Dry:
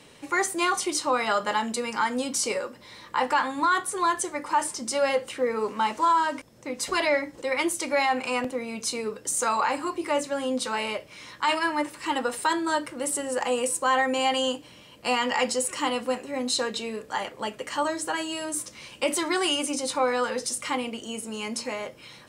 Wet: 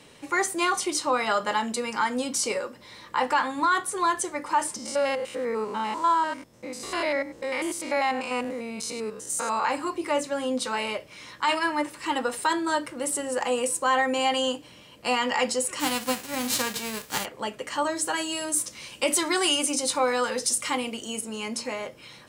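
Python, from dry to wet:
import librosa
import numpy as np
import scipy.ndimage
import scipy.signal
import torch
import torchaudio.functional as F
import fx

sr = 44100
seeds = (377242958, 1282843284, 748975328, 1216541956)

y = fx.spec_steps(x, sr, hold_ms=100, at=(4.76, 9.65))
y = fx.envelope_flatten(y, sr, power=0.3, at=(15.79, 17.24), fade=0.02)
y = fx.high_shelf(y, sr, hz=4000.0, db=6.5, at=(17.96, 21.21))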